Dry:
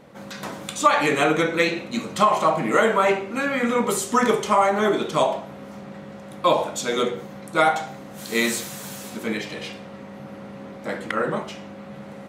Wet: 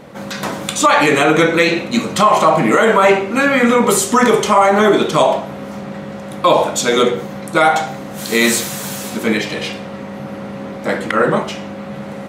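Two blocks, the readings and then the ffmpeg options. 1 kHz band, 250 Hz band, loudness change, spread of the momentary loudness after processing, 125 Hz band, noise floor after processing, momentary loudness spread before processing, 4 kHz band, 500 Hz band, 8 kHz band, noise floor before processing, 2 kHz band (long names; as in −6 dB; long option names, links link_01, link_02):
+7.5 dB, +9.5 dB, +8.0 dB, 17 LU, +9.5 dB, −29 dBFS, 20 LU, +9.0 dB, +8.5 dB, +10.0 dB, −40 dBFS, +8.5 dB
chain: -af "alimiter=level_in=11.5dB:limit=-1dB:release=50:level=0:latency=1,volume=-1dB"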